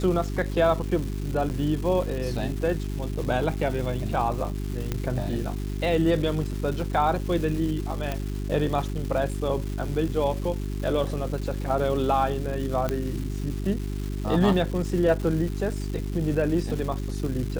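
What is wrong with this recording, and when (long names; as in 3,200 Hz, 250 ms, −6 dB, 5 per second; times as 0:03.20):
surface crackle 580 per second −33 dBFS
mains hum 50 Hz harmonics 8 −30 dBFS
0:01.49–0:01.50: drop-out 9.1 ms
0:04.92: click −13 dBFS
0:08.12: click −14 dBFS
0:12.89: click −13 dBFS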